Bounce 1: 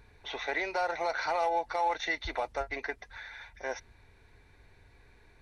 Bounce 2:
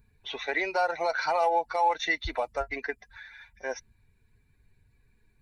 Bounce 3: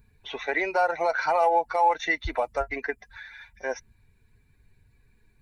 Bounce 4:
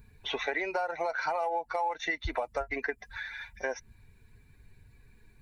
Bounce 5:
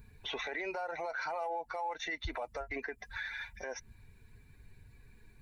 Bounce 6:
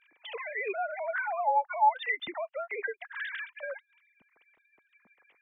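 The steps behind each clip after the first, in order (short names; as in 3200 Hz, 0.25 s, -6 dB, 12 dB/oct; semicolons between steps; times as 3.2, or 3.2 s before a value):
per-bin expansion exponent 1.5; gain +6 dB
dynamic EQ 4300 Hz, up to -8 dB, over -50 dBFS, Q 1.2; gain +3.5 dB
compressor 6:1, threshold -33 dBFS, peak gain reduction 15 dB; gain +4 dB
limiter -29.5 dBFS, peak gain reduction 11.5 dB
sine-wave speech; gain +7.5 dB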